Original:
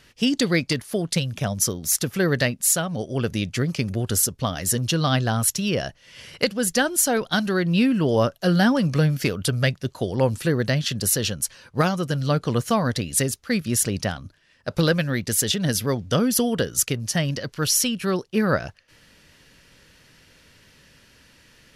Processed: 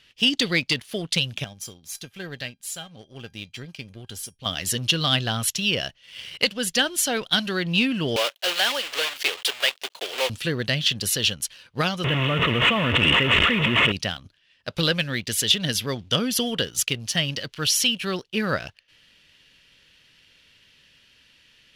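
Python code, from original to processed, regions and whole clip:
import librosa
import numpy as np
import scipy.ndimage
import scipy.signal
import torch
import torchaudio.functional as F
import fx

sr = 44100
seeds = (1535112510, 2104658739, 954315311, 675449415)

y = fx.chain(x, sr, fx.low_shelf(hz=420.0, db=4.0),
    fx.comb_fb(f0_hz=800.0, decay_s=0.15, harmonics='all', damping=0.0, mix_pct=80), at=(1.44, 4.46))
y = fx.chain(y, sr, fx.block_float(bits=3),
    fx.highpass(hz=440.0, slope=24), at=(8.16, 10.3))
y = fx.chain(y, sr, fx.delta_mod(bps=16000, step_db=-21.0),
    fx.notch_comb(f0_hz=790.0),
    fx.env_flatten(amount_pct=100), at=(12.04, 13.92))
y = fx.peak_eq(y, sr, hz=3100.0, db=14.5, octaves=1.2)
y = fx.leveller(y, sr, passes=1)
y = y * librosa.db_to_amplitude(-9.0)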